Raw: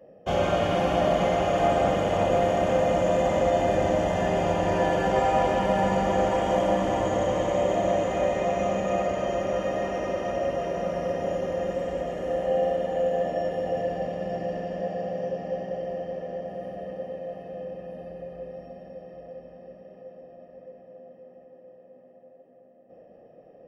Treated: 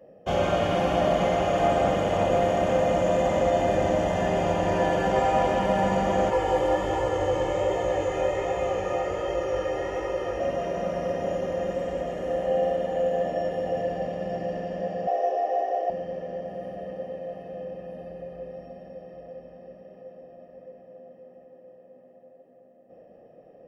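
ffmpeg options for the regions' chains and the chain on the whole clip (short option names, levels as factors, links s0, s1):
-filter_complex "[0:a]asettb=1/sr,asplit=3[s0][s1][s2];[s0]atrim=end=6.304[s3];[s1]atrim=start=6.3:end=10.4,asetpts=PTS-STARTPTS,afade=t=in:d=0.004:c=qsin,afade=t=out:st=4.096:d=0.004:c=qsin,aecho=1:1:2.3:0.96,atrim=end_sample=180810,flanger=delay=17:depth=6.1:speed=1.3[s4];[s2]atrim=start=10.396[s5];[s3][s4]acrossfade=d=0.004:c1=hsin:c2=qsin[s6];[s6][s5]acrossfade=d=0.004:c1=qsin:c2=hsin,asettb=1/sr,asplit=3[s7][s8][s9];[s7]atrim=end=15.074[s10];[s8]atrim=start=15.07:end=15.9,asetpts=PTS-STARTPTS,afade=t=in:d=0.004:c=qsin,afade=t=out:st=0.826:d=0.004:c=qsin,highpass=f=360:w=0.5412,highpass=f=360:w=1.3066,equalizer=f=700:w=1.9:g=11,aecho=1:1:2.7:0.69,atrim=end_sample=36603[s11];[s9]atrim=start=15.896[s12];[s10][s11]acrossfade=d=0.004:c1=hsin:c2=qsin[s13];[s13][s12]acrossfade=d=0.004:c1=qsin:c2=hsin"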